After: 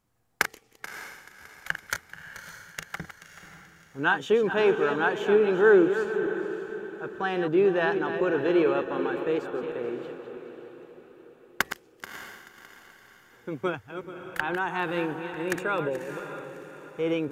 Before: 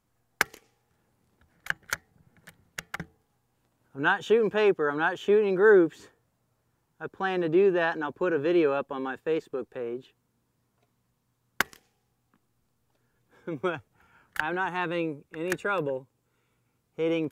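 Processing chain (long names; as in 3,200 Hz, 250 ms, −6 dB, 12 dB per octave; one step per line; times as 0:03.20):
feedback delay that plays each chunk backwards 216 ms, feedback 48%, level −9 dB
feedback delay with all-pass diffusion 600 ms, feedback 43%, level −11 dB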